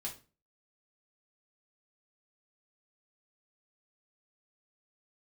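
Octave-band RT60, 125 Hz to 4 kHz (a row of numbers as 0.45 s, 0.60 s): 0.45 s, 0.45 s, 0.35 s, 0.30 s, 0.30 s, 0.30 s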